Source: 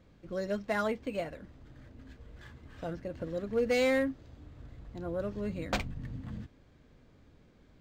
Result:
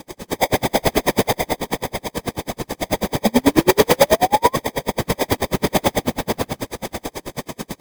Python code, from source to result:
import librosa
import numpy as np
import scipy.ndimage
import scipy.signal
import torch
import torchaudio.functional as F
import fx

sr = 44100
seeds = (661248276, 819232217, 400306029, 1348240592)

y = fx.bin_compress(x, sr, power=0.6)
y = scipy.signal.sosfilt(scipy.signal.butter(2, 110.0, 'highpass', fs=sr, output='sos'), y)
y = fx.echo_feedback(y, sr, ms=515, feedback_pct=51, wet_db=-8.0)
y = fx.rev_spring(y, sr, rt60_s=1.4, pass_ms=(35, 40), chirp_ms=70, drr_db=-8.0)
y = fx.sample_hold(y, sr, seeds[0], rate_hz=1400.0, jitter_pct=0)
y = fx.bass_treble(y, sr, bass_db=-1, treble_db=6)
y = fx.whisperise(y, sr, seeds[1])
y = fx.dynamic_eq(y, sr, hz=7700.0, q=0.81, threshold_db=-41.0, ratio=4.0, max_db=-5)
y = fx.fold_sine(y, sr, drive_db=9, ceiling_db=-4.5)
y = fx.spec_paint(y, sr, seeds[2], shape='rise', start_s=3.25, length_s=1.31, low_hz=210.0, high_hz=1100.0, level_db=-10.0)
y = y * 10.0 ** (-39 * (0.5 - 0.5 * np.cos(2.0 * np.pi * 9.2 * np.arange(len(y)) / sr)) / 20.0)
y = y * librosa.db_to_amplitude(-1.5)